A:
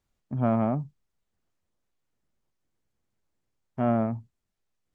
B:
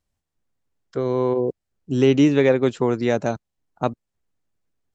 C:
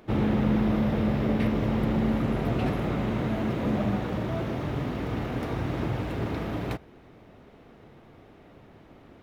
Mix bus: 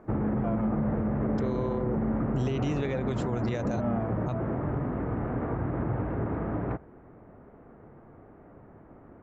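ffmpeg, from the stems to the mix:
-filter_complex "[0:a]asplit=2[a][b];[b]adelay=2,afreqshift=-2.8[c];[a][c]amix=inputs=2:normalize=1,volume=0.5dB[d];[1:a]asubboost=boost=7.5:cutoff=110,acompressor=threshold=-27dB:ratio=2,adelay=450,volume=1.5dB[e];[2:a]lowpass=f=1.6k:w=0.5412,lowpass=f=1.6k:w=1.3066,volume=0.5dB[f];[d][e][f]amix=inputs=3:normalize=0,alimiter=limit=-20.5dB:level=0:latency=1:release=68"

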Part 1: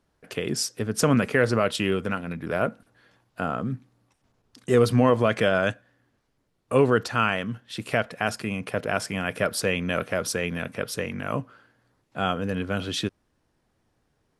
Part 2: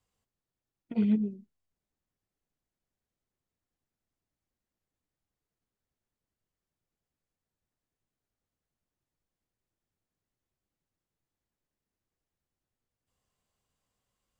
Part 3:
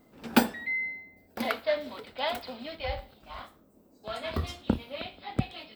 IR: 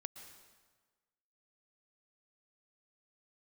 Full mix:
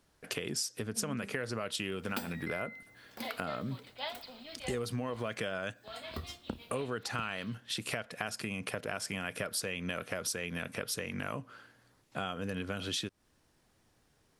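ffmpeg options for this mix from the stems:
-filter_complex "[0:a]acompressor=threshold=-33dB:ratio=2,volume=-0.5dB[a];[1:a]volume=-12.5dB[b];[2:a]tremolo=f=6.2:d=0.36,adelay=1800,volume=-9.5dB,asplit=2[c][d];[d]volume=-15dB[e];[3:a]atrim=start_sample=2205[f];[e][f]afir=irnorm=-1:irlink=0[g];[a][b][c][g]amix=inputs=4:normalize=0,highshelf=f=2.3k:g=8,acompressor=threshold=-34dB:ratio=3"

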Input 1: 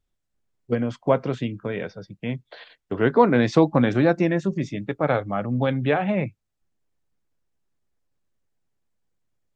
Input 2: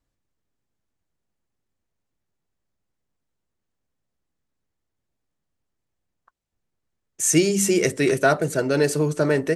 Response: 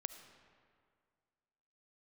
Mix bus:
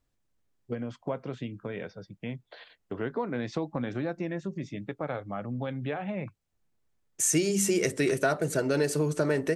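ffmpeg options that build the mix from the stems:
-filter_complex "[0:a]acompressor=threshold=-28dB:ratio=2,volume=-5.5dB[a];[1:a]volume=-0.5dB[b];[a][b]amix=inputs=2:normalize=0,acompressor=threshold=-25dB:ratio=2.5"

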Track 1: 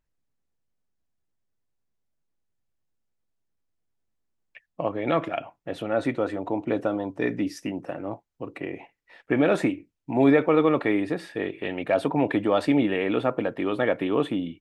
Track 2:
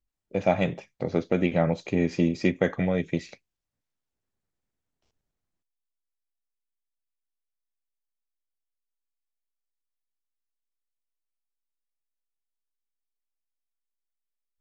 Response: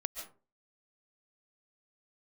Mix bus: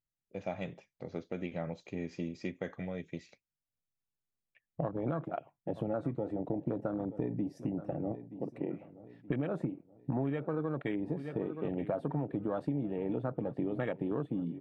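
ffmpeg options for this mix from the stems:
-filter_complex "[0:a]afwtdn=0.0447,equalizer=f=140:w=1.6:g=12.5,volume=-2.5dB,asplit=2[a][b];[b]volume=-20.5dB[c];[1:a]volume=-14dB[d];[c]aecho=0:1:924|1848|2772|3696|4620|5544:1|0.41|0.168|0.0689|0.0283|0.0116[e];[a][d][e]amix=inputs=3:normalize=0,acompressor=threshold=-30dB:ratio=12"

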